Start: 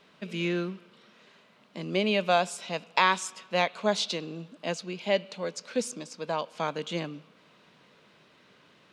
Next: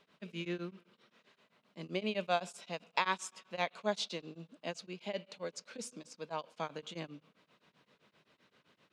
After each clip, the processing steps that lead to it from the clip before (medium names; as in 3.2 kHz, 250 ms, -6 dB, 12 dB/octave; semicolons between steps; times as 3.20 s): tremolo of two beating tones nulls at 7.7 Hz; trim -7 dB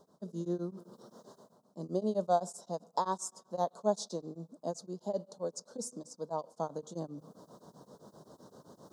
Chebyshev band-stop 820–6500 Hz, order 2; reverse; upward compressor, threshold -47 dBFS; reverse; trim +5 dB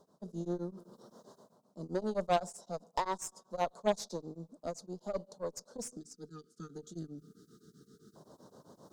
spectral selection erased 5.96–8.16 s, 460–1200 Hz; Chebyshev shaper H 4 -13 dB, 6 -13 dB, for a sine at -16 dBFS; trim -2 dB